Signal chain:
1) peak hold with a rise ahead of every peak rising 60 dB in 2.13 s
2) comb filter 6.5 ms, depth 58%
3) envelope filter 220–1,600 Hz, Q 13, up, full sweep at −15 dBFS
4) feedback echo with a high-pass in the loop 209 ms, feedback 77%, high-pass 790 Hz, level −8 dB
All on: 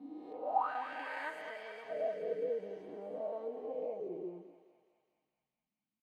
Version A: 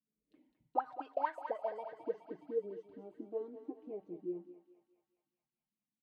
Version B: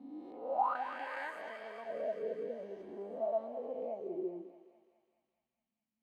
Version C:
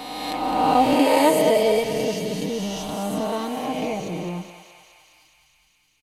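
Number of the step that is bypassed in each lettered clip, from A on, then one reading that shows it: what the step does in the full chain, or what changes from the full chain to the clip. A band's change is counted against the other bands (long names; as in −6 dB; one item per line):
1, 2 kHz band −7.5 dB
2, 250 Hz band +2.0 dB
3, change in crest factor −2.5 dB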